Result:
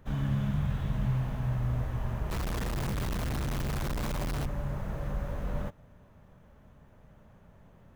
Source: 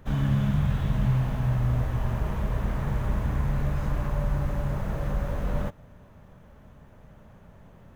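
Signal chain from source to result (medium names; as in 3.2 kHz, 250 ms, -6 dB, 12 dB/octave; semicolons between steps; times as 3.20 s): 2.30–4.46 s: companded quantiser 2-bit; trim -5.5 dB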